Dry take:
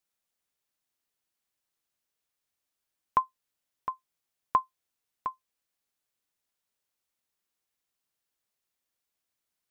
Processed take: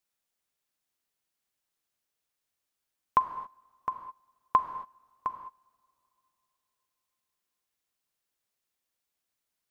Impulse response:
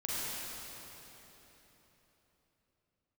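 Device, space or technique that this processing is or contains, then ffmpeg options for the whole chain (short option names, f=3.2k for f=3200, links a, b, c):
keyed gated reverb: -filter_complex "[0:a]asplit=3[a][b][c];[1:a]atrim=start_sample=2205[d];[b][d]afir=irnorm=-1:irlink=0[e];[c]apad=whole_len=428019[f];[e][f]sidechaingate=range=-22dB:threshold=-56dB:ratio=16:detection=peak,volume=-11.5dB[g];[a][g]amix=inputs=2:normalize=0"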